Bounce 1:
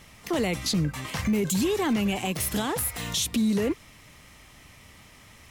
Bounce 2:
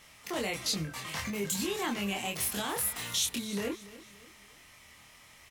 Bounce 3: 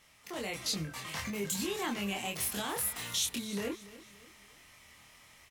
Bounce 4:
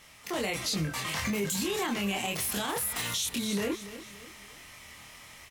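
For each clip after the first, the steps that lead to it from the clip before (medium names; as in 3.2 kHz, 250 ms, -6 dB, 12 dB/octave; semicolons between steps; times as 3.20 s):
bass shelf 480 Hz -10.5 dB; doubling 25 ms -3 dB; feedback delay 286 ms, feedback 42%, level -17.5 dB; trim -4 dB
level rider gain up to 5 dB; trim -7 dB
peak limiter -30.5 dBFS, peak gain reduction 10 dB; trim +8.5 dB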